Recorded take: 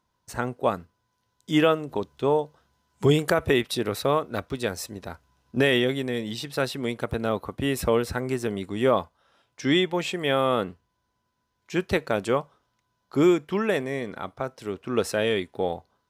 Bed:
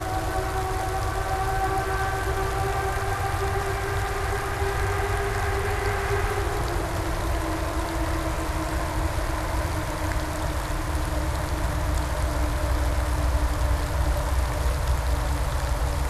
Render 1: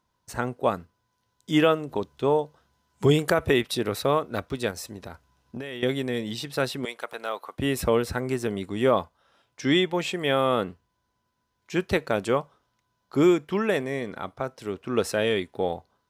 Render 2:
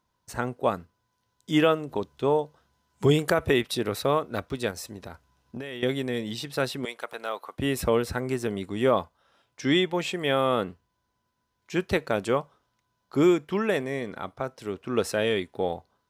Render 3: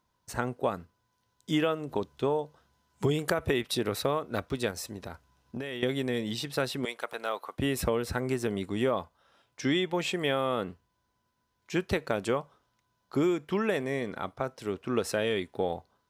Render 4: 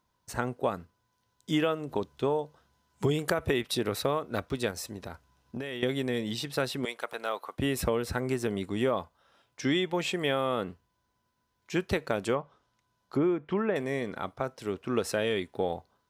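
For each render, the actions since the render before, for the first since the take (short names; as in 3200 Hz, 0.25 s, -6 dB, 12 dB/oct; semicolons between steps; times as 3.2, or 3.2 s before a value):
4.7–5.83 compressor, threshold -32 dBFS; 6.85–7.58 HPF 720 Hz
gain -1 dB
compressor 4:1, threshold -24 dBFS, peak gain reduction 8 dB
12.34–13.76 treble ducked by the level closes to 1700 Hz, closed at -27 dBFS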